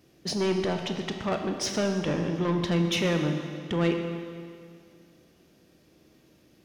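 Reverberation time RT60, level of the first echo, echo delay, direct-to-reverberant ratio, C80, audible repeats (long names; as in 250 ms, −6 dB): 2.2 s, no echo audible, no echo audible, 4.5 dB, 6.5 dB, no echo audible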